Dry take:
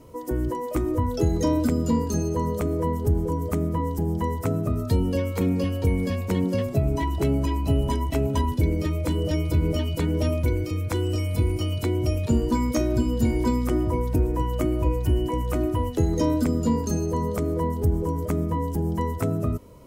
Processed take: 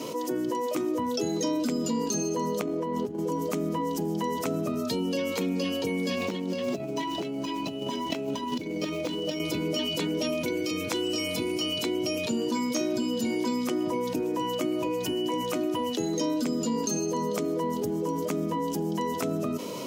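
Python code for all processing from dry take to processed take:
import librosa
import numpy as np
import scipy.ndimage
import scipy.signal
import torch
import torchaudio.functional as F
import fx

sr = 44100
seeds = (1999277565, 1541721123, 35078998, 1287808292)

y = fx.chain(x, sr, fx.high_shelf(hz=5300.0, db=-11.5),
    fx.over_compress(threshold_db=-28.0, ratio=-0.5), at=(2.61, 3.19))
y = fx.chain(y, sr, fx.median_filter(points=5),
    fx.over_compress(threshold_db=-29.0, ratio=-0.5), at=(6.17, 9.4))
y = scipy.signal.sosfilt(scipy.signal.butter(4, 190.0, 'highpass', fs=sr, output='sos'), y)
y = fx.band_shelf(y, sr, hz=4100.0, db=8.5, octaves=1.7)
y = fx.env_flatten(y, sr, amount_pct=70)
y = y * 10.0 ** (-6.5 / 20.0)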